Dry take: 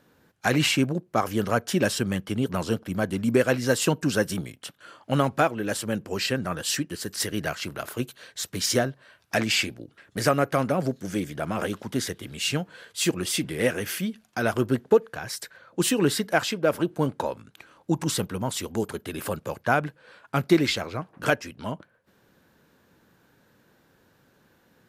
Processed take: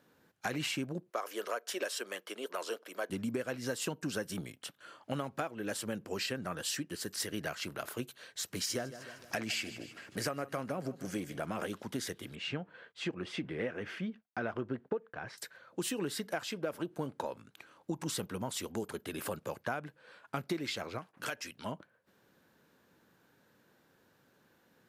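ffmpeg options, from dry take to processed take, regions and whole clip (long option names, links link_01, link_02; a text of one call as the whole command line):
ffmpeg -i in.wav -filter_complex "[0:a]asettb=1/sr,asplit=3[link_01][link_02][link_03];[link_01]atrim=end=1.104[link_04];[link_02]atrim=start=1.1:end=3.1,asetpts=PTS-STARTPTS,afade=type=in:duration=0.004:curve=qsin,afade=type=out:start_time=1.996:duration=0.004:curve=qsin,highpass=frequency=410:width=0.5412,highpass=frequency=410:width=1.3066,bandreject=frequency=810:width=7.7[link_05];[link_03]atrim=start=3.096[link_06];[link_04][link_05]acrossfade=duration=0.004:curve1=hsin:curve2=qsin[link_07];[link_07][link_06]acrossfade=duration=0.004:curve1=qsin:curve2=hsin,asettb=1/sr,asplit=3[link_08][link_09][link_10];[link_08]atrim=end=8.414[link_11];[link_09]atrim=start=8.41:end=11.46,asetpts=PTS-STARTPTS,afade=type=in:duration=0.004:curve=qsin,afade=type=out:start_time=3.046:duration=0.004:curve=qsin,bandreject=frequency=3600:width=18,acompressor=mode=upward:threshold=-34dB:ratio=2.5:attack=3.2:release=140:knee=2.83:detection=peak,aecho=1:1:153|306|459|612:0.119|0.0594|0.0297|0.0149,atrim=end_sample=134505[link_12];[link_10]atrim=start=11.456[link_13];[link_11][link_12]acrossfade=duration=0.004:curve1=hsin:curve2=qsin[link_14];[link_14][link_13]acrossfade=duration=0.004:curve1=qsin:curve2=hsin,asettb=1/sr,asplit=3[link_15][link_16][link_17];[link_15]atrim=end=12.354[link_18];[link_16]atrim=start=12.35:end=15.38,asetpts=PTS-STARTPTS,afade=type=in:duration=0.004:curve=qsin,afade=type=out:start_time=3.026:duration=0.004:curve=qsin,agate=range=-33dB:threshold=-47dB:ratio=3:release=100:detection=peak,lowpass=2300[link_19];[link_17]atrim=start=15.376[link_20];[link_18][link_19]acrossfade=duration=0.004:curve1=hsin:curve2=qsin[link_21];[link_21][link_20]acrossfade=duration=0.004:curve1=qsin:curve2=hsin,asettb=1/sr,asplit=3[link_22][link_23][link_24];[link_22]atrim=end=20.984[link_25];[link_23]atrim=start=20.98:end=21.65,asetpts=PTS-STARTPTS,afade=type=in:duration=0.004:curve=qsin,afade=type=out:start_time=0.666:duration=0.004:curve=qsin,agate=range=-33dB:threshold=-52dB:ratio=3:release=100:detection=peak,tiltshelf=frequency=1200:gain=-5.5,acompressor=threshold=-31dB:ratio=2:attack=3.2:release=140:knee=1:detection=peak[link_26];[link_24]atrim=start=21.646[link_27];[link_25][link_26]acrossfade=duration=0.004:curve1=hsin:curve2=qsin[link_28];[link_28][link_27]acrossfade=duration=0.004:curve1=qsin:curve2=hsin,lowshelf=frequency=85:gain=-11,acompressor=threshold=-27dB:ratio=6,volume=-5.5dB" out.wav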